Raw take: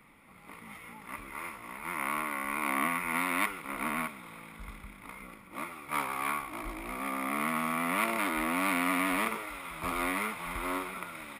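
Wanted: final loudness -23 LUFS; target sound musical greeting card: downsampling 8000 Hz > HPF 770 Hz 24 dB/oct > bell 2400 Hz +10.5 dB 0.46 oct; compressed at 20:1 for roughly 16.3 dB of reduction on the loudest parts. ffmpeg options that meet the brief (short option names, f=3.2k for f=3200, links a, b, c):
-af "acompressor=threshold=-41dB:ratio=20,aresample=8000,aresample=44100,highpass=f=770:w=0.5412,highpass=f=770:w=1.3066,equalizer=f=2.4k:t=o:w=0.46:g=10.5,volume=18dB"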